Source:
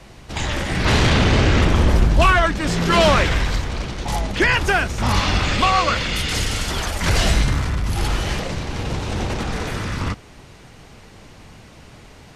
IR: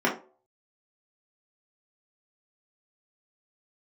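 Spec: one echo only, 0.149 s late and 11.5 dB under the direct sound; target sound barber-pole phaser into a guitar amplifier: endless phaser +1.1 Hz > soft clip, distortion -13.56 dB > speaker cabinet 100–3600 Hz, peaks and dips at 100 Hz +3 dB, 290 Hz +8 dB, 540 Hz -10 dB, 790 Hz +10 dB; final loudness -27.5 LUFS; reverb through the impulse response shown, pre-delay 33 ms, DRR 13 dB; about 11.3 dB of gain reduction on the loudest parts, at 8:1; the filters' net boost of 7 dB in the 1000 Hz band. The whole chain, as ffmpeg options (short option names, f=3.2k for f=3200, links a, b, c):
-filter_complex "[0:a]equalizer=f=1k:t=o:g=4.5,acompressor=threshold=-21dB:ratio=8,aecho=1:1:149:0.266,asplit=2[a][b];[1:a]atrim=start_sample=2205,adelay=33[c];[b][c]afir=irnorm=-1:irlink=0,volume=-28dB[d];[a][d]amix=inputs=2:normalize=0,asplit=2[e][f];[f]afreqshift=1.1[g];[e][g]amix=inputs=2:normalize=1,asoftclip=threshold=-24.5dB,highpass=100,equalizer=f=100:t=q:w=4:g=3,equalizer=f=290:t=q:w=4:g=8,equalizer=f=540:t=q:w=4:g=-10,equalizer=f=790:t=q:w=4:g=10,lowpass=f=3.6k:w=0.5412,lowpass=f=3.6k:w=1.3066,volume=2.5dB"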